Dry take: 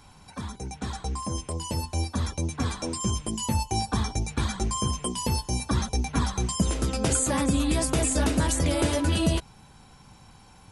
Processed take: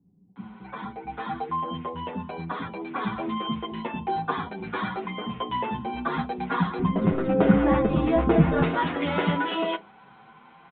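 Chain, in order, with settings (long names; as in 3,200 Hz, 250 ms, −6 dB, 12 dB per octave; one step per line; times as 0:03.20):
stylus tracing distortion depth 0.077 ms
low-shelf EQ 170 Hz −8.5 dB
multiband delay without the direct sound lows, highs 360 ms, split 280 Hz
convolution reverb RT60 0.25 s, pre-delay 3 ms, DRR 9.5 dB
downsampling to 8,000 Hz
0:06.79–0:08.63: spectral tilt −4 dB per octave
barber-pole flanger 7.8 ms +0.43 Hz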